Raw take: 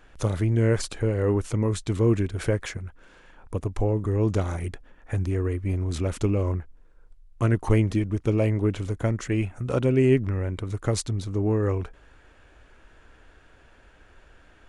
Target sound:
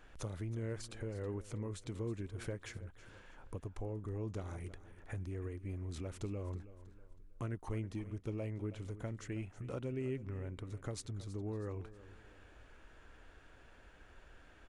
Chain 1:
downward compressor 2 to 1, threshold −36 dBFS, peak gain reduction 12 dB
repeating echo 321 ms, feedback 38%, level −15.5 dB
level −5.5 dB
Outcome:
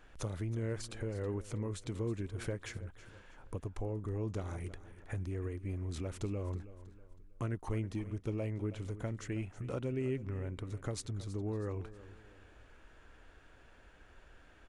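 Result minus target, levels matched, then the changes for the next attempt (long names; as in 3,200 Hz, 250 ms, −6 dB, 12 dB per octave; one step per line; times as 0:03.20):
downward compressor: peak gain reduction −3.5 dB
change: downward compressor 2 to 1, threshold −43 dBFS, peak gain reduction 15.5 dB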